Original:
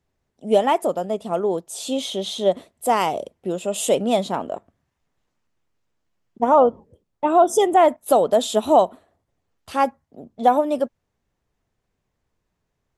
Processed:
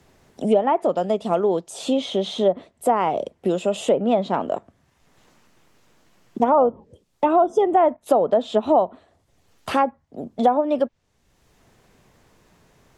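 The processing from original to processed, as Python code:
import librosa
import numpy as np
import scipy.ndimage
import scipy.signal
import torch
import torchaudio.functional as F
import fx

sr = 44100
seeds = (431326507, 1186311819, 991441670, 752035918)

y = fx.env_lowpass_down(x, sr, base_hz=1300.0, full_db=-13.5)
y = fx.band_squash(y, sr, depth_pct=70)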